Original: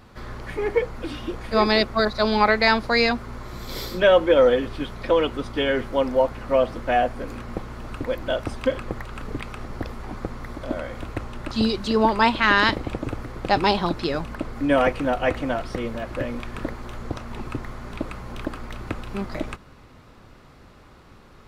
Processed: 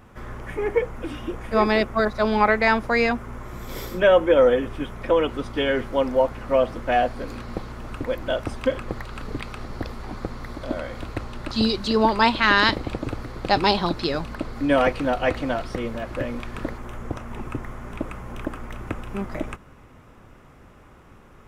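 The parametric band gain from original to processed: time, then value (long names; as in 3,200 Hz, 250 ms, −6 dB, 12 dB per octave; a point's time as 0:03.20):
parametric band 4,300 Hz 0.5 octaves
−13.5 dB
from 0:05.29 −3.5 dB
from 0:06.92 +5 dB
from 0:07.72 −2 dB
from 0:08.89 +4.5 dB
from 0:15.65 −1.5 dB
from 0:16.78 −13 dB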